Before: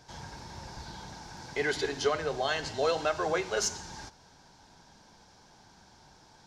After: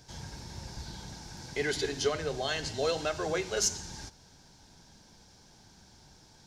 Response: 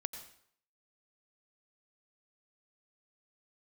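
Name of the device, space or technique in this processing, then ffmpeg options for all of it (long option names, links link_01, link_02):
smiley-face EQ: -af "lowshelf=frequency=170:gain=4.5,equalizer=frequency=1000:width_type=o:width=1.5:gain=-6.5,highshelf=frequency=6900:gain=7"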